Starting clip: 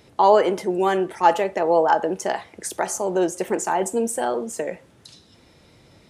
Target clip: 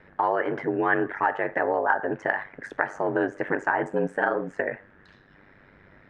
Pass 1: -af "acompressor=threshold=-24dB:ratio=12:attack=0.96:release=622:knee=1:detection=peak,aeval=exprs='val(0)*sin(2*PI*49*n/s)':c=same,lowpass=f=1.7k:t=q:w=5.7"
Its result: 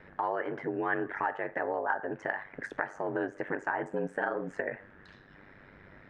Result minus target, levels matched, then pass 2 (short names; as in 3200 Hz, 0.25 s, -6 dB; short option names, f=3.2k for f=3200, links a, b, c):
compressor: peak gain reduction +8 dB
-af "acompressor=threshold=-15.5dB:ratio=12:attack=0.96:release=622:knee=1:detection=peak,aeval=exprs='val(0)*sin(2*PI*49*n/s)':c=same,lowpass=f=1.7k:t=q:w=5.7"